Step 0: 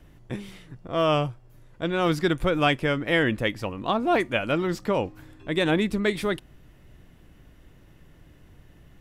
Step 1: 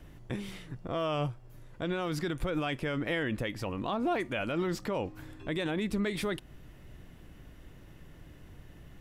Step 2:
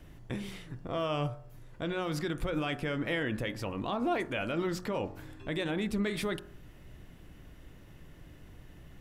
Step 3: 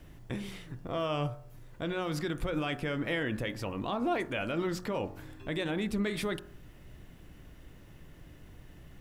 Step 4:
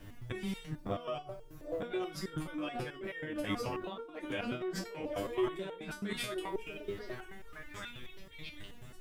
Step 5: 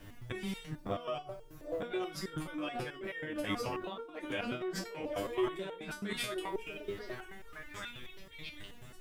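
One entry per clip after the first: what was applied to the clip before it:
in parallel at 0 dB: compression, threshold -32 dBFS, peak gain reduction 15 dB; on the sum: peak limiter -17.5 dBFS, peak gain reduction 10 dB; trim -5 dB
de-hum 45.21 Hz, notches 40
bit crusher 12-bit
repeats whose band climbs or falls 753 ms, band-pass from 450 Hz, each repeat 1.4 oct, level -2.5 dB; compressor with a negative ratio -35 dBFS, ratio -0.5; resonator arpeggio 9.3 Hz 100–460 Hz; trim +10 dB
bass shelf 370 Hz -3.5 dB; trim +1.5 dB

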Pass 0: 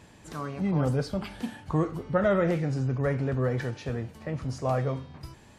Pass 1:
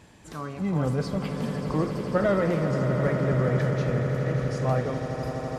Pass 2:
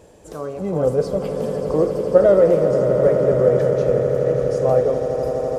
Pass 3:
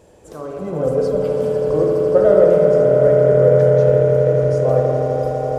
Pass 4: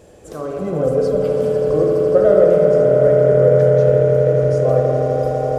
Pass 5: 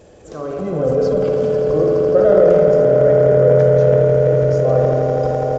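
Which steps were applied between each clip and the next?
echo with a slow build-up 83 ms, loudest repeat 8, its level -12 dB
graphic EQ 125/250/500/1000/2000/4000 Hz -6/-6/+12/-5/-9/-6 dB; trim +5.5 dB
spring tank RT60 3.2 s, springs 53 ms, chirp 50 ms, DRR -0.5 dB; trim -2 dB
band-stop 930 Hz, Q 6.7; in parallel at -1.5 dB: compression, threshold -22 dBFS, peak gain reduction 14.5 dB; on the sum: trim -1.5 dB
transient shaper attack -1 dB, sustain +8 dB; resampled via 16 kHz

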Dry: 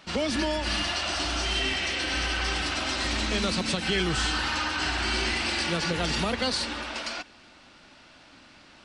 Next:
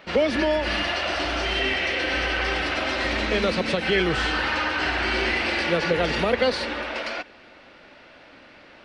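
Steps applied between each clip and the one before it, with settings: graphic EQ 500/2000/8000 Hz +11/+7/-12 dB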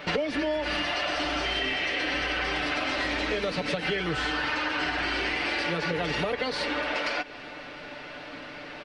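comb 6.8 ms, depth 59%; compression 10:1, threshold -32 dBFS, peak gain reduction 18 dB; trim +6.5 dB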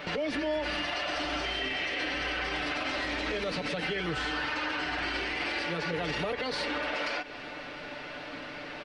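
peak limiter -23.5 dBFS, peak gain reduction 7.5 dB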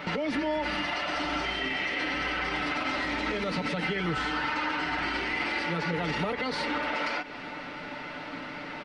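small resonant body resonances 200/910/1300/2000 Hz, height 8 dB, ringing for 20 ms; trim -1 dB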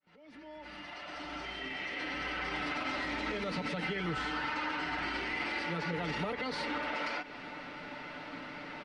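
fade-in on the opening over 2.61 s; trim -5.5 dB

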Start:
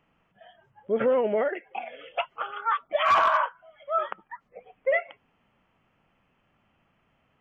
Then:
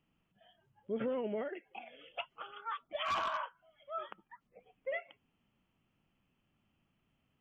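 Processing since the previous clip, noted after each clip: high-order bell 1 kHz -8 dB 2.6 oct; trim -6.5 dB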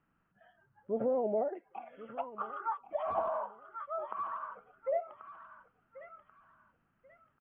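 feedback delay 1086 ms, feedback 27%, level -14 dB; touch-sensitive low-pass 730–1500 Hz down, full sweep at -33.5 dBFS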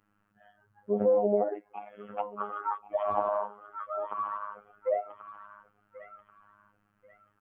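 dynamic bell 330 Hz, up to +4 dB, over -43 dBFS, Q 0.71; robot voice 103 Hz; trim +5.5 dB

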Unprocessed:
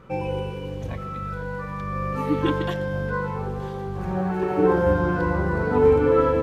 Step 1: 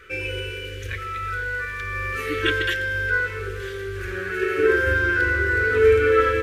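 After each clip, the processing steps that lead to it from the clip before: FFT filter 100 Hz 0 dB, 150 Hz -24 dB, 270 Hz -13 dB, 410 Hz +5 dB, 820 Hz -28 dB, 1.5 kHz +13 dB, 2.4 kHz +13 dB, 4.3 kHz +8 dB, 9 kHz +11 dB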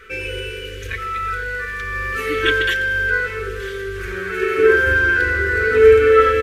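comb 4.5 ms, depth 45%; trim +3 dB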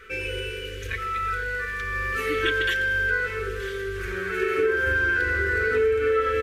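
compression 6:1, threshold -16 dBFS, peak gain reduction 10.5 dB; trim -3.5 dB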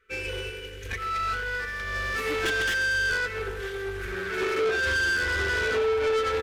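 saturation -28.5 dBFS, distortion -8 dB; upward expansion 2.5:1, over -47 dBFS; trim +6.5 dB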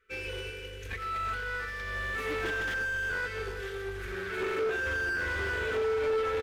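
delay 348 ms -13.5 dB; slew-rate limiter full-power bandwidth 84 Hz; trim -4.5 dB

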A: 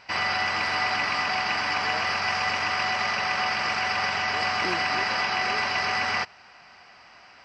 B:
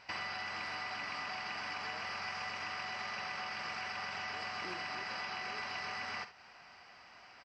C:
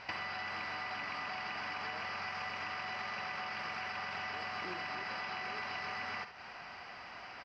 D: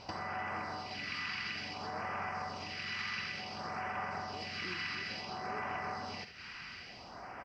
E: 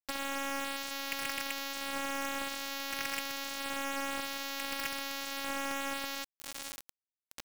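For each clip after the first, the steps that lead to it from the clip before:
compression 6:1, threshold -32 dBFS, peak gain reduction 10 dB; on a send: early reflections 49 ms -12.5 dB, 74 ms -14.5 dB; on the sum: trim -6.5 dB
compression 6:1, threshold -46 dBFS, peak gain reduction 9 dB; distance through air 120 m; trim +9.5 dB
phase shifter stages 2, 0.57 Hz, lowest notch 640–3800 Hz; trim +5.5 dB
robot voice 275 Hz; bit crusher 6-bit; trim +6 dB

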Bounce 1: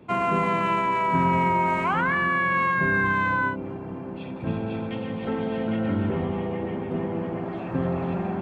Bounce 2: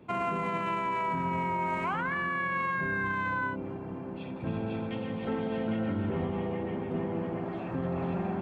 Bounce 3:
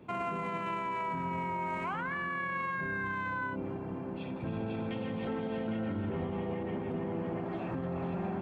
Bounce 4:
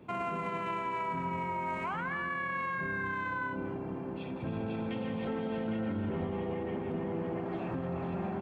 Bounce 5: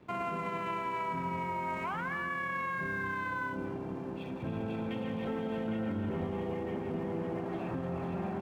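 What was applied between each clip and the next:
peak limiter -19 dBFS, peak gain reduction 8 dB; trim -4 dB
peak limiter -27.5 dBFS, peak gain reduction 4.5 dB
delay 196 ms -13 dB
crossover distortion -59.5 dBFS

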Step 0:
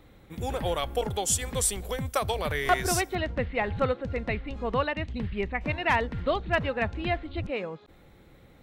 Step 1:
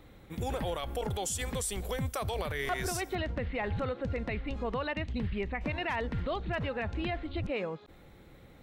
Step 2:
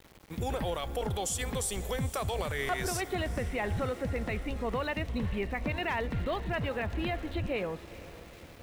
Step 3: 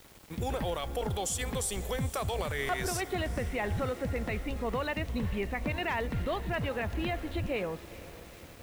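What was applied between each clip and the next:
peak limiter -24.5 dBFS, peak gain reduction 10.5 dB
echo that smears into a reverb 463 ms, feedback 64%, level -16 dB; small samples zeroed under -50 dBFS; trim +1 dB
word length cut 10-bit, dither triangular

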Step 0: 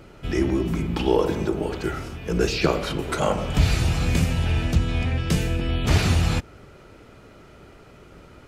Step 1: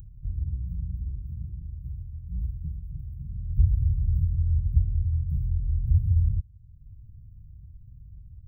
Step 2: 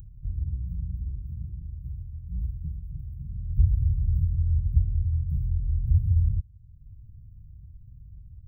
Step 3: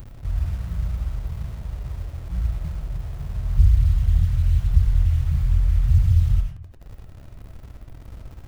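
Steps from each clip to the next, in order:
inverse Chebyshev band-stop 470–8000 Hz, stop band 70 dB; upward compressor, threshold -36 dBFS
no audible change
in parallel at -4 dB: bit crusher 7-bit; on the sum: reverberation RT60 0.50 s, pre-delay 45 ms, DRR 2.5 dB

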